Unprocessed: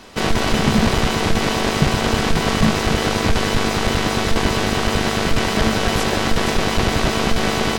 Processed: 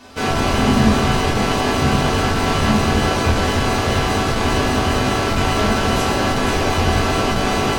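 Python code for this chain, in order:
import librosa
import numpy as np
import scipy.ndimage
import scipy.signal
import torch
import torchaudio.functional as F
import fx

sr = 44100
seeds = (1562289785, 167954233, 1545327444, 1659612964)

y = fx.low_shelf(x, sr, hz=130.0, db=-3.5)
y = fx.notch(y, sr, hz=1900.0, q=22.0)
y = fx.rev_fdn(y, sr, rt60_s=0.99, lf_ratio=1.35, hf_ratio=0.6, size_ms=70.0, drr_db=-5.0)
y = F.gain(torch.from_numpy(y), -5.0).numpy()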